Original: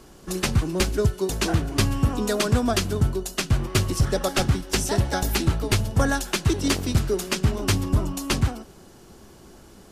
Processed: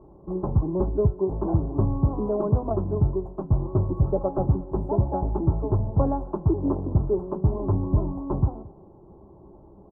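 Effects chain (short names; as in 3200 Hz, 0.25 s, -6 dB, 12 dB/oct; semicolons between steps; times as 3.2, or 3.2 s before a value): elliptic low-pass 1000 Hz, stop band 50 dB; notch comb 240 Hz; on a send: echo 0.222 s -23 dB; on the sum: gain +1 dB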